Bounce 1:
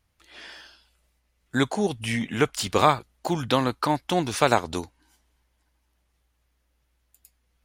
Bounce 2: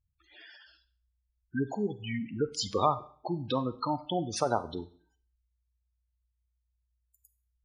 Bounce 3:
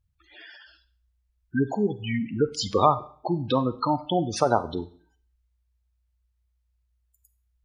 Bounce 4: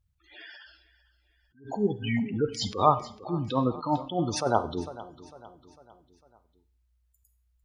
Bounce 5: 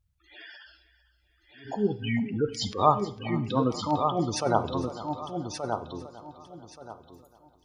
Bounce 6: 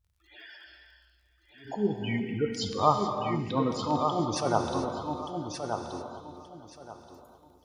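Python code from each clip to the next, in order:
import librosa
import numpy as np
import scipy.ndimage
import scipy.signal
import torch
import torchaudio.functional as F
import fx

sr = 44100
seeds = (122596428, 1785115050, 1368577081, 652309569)

y1 = fx.dynamic_eq(x, sr, hz=5300.0, q=1.2, threshold_db=-46.0, ratio=4.0, max_db=7)
y1 = fx.spec_gate(y1, sr, threshold_db=-10, keep='strong')
y1 = fx.rev_schroeder(y1, sr, rt60_s=0.5, comb_ms=31, drr_db=14.0)
y1 = F.gain(torch.from_numpy(y1), -6.5).numpy()
y2 = fx.high_shelf(y1, sr, hz=4800.0, db=-7.0)
y2 = F.gain(torch.from_numpy(y2), 7.0).numpy()
y3 = fx.echo_feedback(y2, sr, ms=451, feedback_pct=48, wet_db=-19)
y3 = fx.attack_slew(y3, sr, db_per_s=160.0)
y4 = fx.echo_feedback(y3, sr, ms=1177, feedback_pct=22, wet_db=-6)
y5 = fx.dmg_crackle(y4, sr, seeds[0], per_s=48.0, level_db=-56.0)
y5 = fx.rev_gated(y5, sr, seeds[1], gate_ms=460, shape='flat', drr_db=5.0)
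y5 = F.gain(torch.from_numpy(y5), -2.5).numpy()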